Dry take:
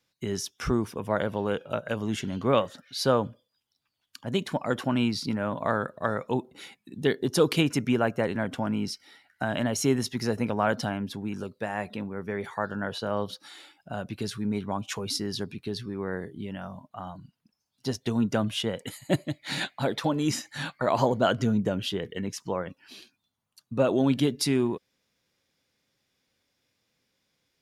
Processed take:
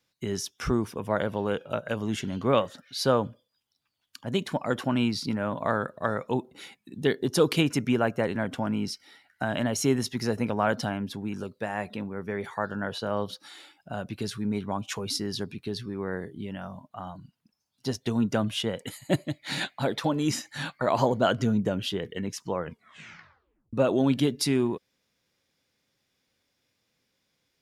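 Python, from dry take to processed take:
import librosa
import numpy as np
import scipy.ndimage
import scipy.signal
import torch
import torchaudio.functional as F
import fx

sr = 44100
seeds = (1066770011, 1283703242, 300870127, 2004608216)

y = fx.edit(x, sr, fx.tape_stop(start_s=22.57, length_s=1.16), tone=tone)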